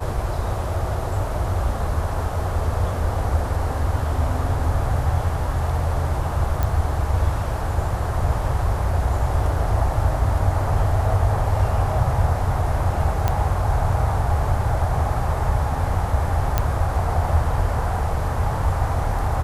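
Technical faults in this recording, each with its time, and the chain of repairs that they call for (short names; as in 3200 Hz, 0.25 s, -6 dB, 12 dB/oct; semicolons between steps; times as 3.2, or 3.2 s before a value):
6.63 pop -10 dBFS
13.28 pop -8 dBFS
16.58 pop -6 dBFS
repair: de-click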